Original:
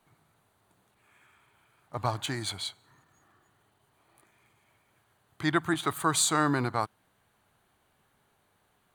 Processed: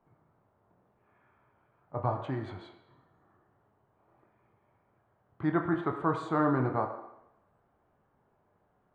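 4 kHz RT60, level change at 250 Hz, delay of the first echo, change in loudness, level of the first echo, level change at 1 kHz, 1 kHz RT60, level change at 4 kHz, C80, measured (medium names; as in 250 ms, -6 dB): 0.90 s, +0.5 dB, no echo, -2.5 dB, no echo, -2.0 dB, 0.85 s, -22.5 dB, 9.5 dB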